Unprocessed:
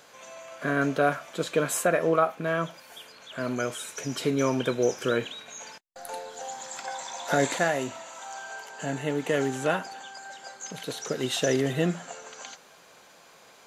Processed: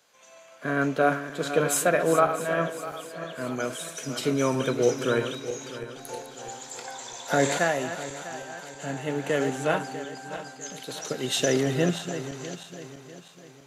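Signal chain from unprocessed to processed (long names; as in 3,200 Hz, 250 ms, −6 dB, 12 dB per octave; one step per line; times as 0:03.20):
feedback delay that plays each chunk backwards 324 ms, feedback 71%, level −8.5 dB
multiband upward and downward expander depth 40%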